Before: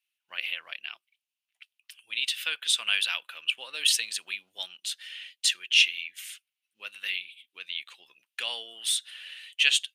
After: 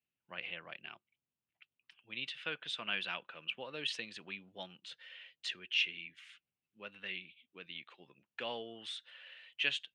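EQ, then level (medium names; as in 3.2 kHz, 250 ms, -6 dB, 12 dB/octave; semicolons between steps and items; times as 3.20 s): band-pass filter 140 Hz, Q 1.3; distance through air 77 m; +18.0 dB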